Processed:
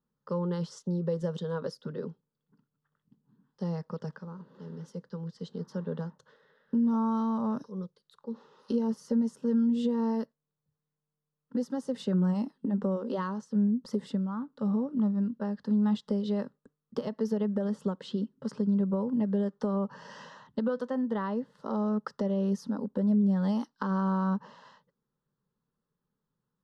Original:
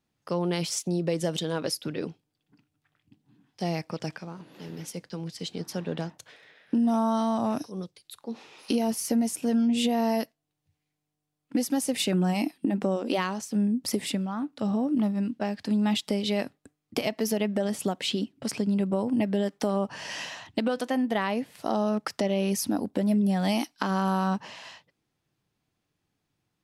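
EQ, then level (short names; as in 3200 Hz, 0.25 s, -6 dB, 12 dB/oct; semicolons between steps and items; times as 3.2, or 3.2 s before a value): tape spacing loss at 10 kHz 27 dB; fixed phaser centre 470 Hz, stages 8; 0.0 dB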